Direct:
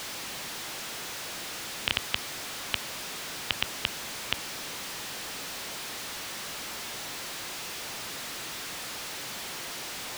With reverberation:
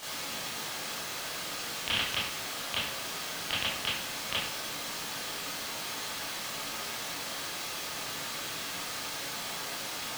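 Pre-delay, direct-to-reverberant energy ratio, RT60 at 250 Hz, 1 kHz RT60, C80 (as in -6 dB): 21 ms, -9.5 dB, 0.60 s, 0.60 s, 6.0 dB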